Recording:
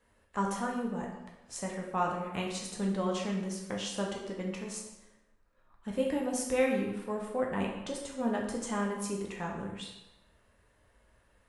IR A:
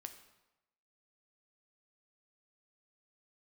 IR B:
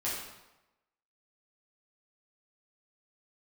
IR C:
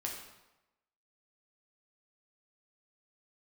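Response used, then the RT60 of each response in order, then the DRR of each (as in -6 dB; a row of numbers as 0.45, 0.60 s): C; 0.95, 1.0, 1.0 s; 7.0, -8.5, -1.5 dB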